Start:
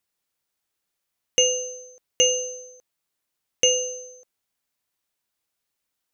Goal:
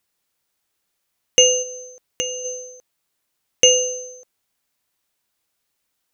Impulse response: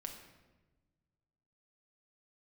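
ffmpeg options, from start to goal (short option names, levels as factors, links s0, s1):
-filter_complex "[0:a]asplit=3[s0][s1][s2];[s0]afade=t=out:st=1.62:d=0.02[s3];[s1]acompressor=threshold=0.0224:ratio=3,afade=t=in:st=1.62:d=0.02,afade=t=out:st=2.44:d=0.02[s4];[s2]afade=t=in:st=2.44:d=0.02[s5];[s3][s4][s5]amix=inputs=3:normalize=0,volume=2"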